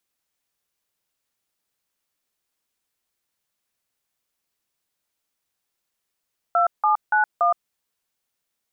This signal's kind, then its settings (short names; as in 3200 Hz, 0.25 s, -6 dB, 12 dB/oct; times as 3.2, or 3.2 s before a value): DTMF "2791", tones 0.118 s, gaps 0.168 s, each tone -18 dBFS